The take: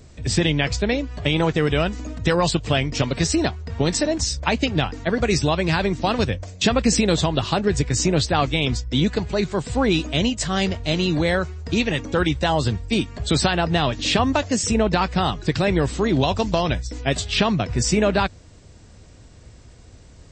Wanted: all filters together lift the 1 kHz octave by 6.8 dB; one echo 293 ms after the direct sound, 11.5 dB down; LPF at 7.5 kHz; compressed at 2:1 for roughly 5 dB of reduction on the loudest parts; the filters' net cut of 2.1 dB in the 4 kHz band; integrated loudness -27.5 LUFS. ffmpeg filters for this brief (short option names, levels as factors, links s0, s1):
-af "lowpass=7500,equalizer=f=1000:t=o:g=9,equalizer=f=4000:t=o:g=-3,acompressor=threshold=0.112:ratio=2,aecho=1:1:293:0.266,volume=0.562"